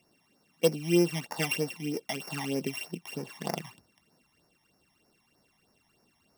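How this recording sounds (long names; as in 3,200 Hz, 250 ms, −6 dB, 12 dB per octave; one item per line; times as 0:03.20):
a buzz of ramps at a fixed pitch in blocks of 16 samples
phaser sweep stages 12, 3.2 Hz, lowest notch 440–3,200 Hz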